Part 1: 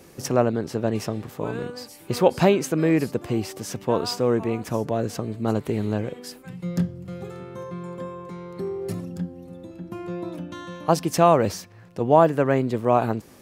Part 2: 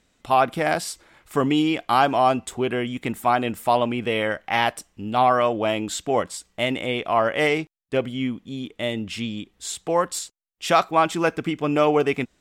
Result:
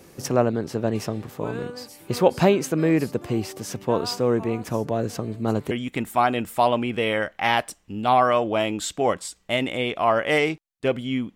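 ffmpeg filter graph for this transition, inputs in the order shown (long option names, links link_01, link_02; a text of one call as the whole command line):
ffmpeg -i cue0.wav -i cue1.wav -filter_complex "[0:a]apad=whole_dur=11.35,atrim=end=11.35,atrim=end=5.712[link_01];[1:a]atrim=start=2.798:end=8.44[link_02];[link_01][link_02]acrossfade=duration=0.004:curve1=hsin:curve2=hsin" out.wav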